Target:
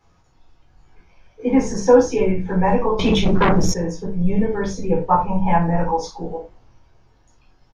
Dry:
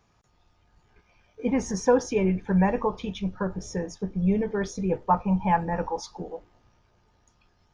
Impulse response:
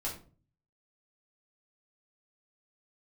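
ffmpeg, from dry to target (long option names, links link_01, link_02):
-filter_complex "[0:a]aresample=32000,aresample=44100[link_01];[1:a]atrim=start_sample=2205,afade=type=out:start_time=0.16:duration=0.01,atrim=end_sample=7497[link_02];[link_01][link_02]afir=irnorm=-1:irlink=0,asettb=1/sr,asplit=3[link_03][link_04][link_05];[link_03]atrim=end=2.994[link_06];[link_04]atrim=start=2.99:end=3.74,asetpts=PTS-STARTPTS,afade=type=in:duration=0.004:curve=qsin,afade=type=out:start_time=0.746:duration=0.004:curve=qsin,aeval=exprs='0.2*sin(PI/2*3.16*val(0)/0.2)':channel_layout=same[link_07];[link_05]atrim=start=3.736[link_08];[link_06][link_07]acrossfade=duration=0.004:curve1=hsin:curve2=qsin[link_09];[link_09][link_08]acrossfade=duration=0.004:curve1=qsin:curve2=hsin,volume=3.5dB"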